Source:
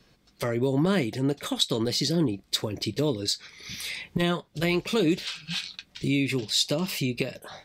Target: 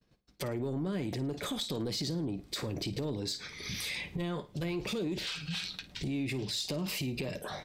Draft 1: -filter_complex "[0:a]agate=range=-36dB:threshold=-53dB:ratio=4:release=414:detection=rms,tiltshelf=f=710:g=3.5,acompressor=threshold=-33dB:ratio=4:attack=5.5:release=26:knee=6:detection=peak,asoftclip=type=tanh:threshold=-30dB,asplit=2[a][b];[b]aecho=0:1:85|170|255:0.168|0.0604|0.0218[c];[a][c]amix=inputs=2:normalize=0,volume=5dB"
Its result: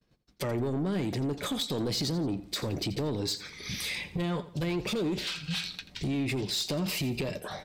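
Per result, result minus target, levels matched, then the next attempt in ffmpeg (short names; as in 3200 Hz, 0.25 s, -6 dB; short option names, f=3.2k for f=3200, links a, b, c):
echo 31 ms late; compressor: peak gain reduction -6 dB
-filter_complex "[0:a]agate=range=-36dB:threshold=-53dB:ratio=4:release=414:detection=rms,tiltshelf=f=710:g=3.5,acompressor=threshold=-33dB:ratio=4:attack=5.5:release=26:knee=6:detection=peak,asoftclip=type=tanh:threshold=-30dB,asplit=2[a][b];[b]aecho=0:1:54|108|162:0.168|0.0604|0.0218[c];[a][c]amix=inputs=2:normalize=0,volume=5dB"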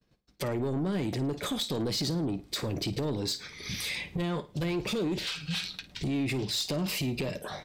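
compressor: peak gain reduction -6 dB
-filter_complex "[0:a]agate=range=-36dB:threshold=-53dB:ratio=4:release=414:detection=rms,tiltshelf=f=710:g=3.5,acompressor=threshold=-41dB:ratio=4:attack=5.5:release=26:knee=6:detection=peak,asoftclip=type=tanh:threshold=-30dB,asplit=2[a][b];[b]aecho=0:1:54|108|162:0.168|0.0604|0.0218[c];[a][c]amix=inputs=2:normalize=0,volume=5dB"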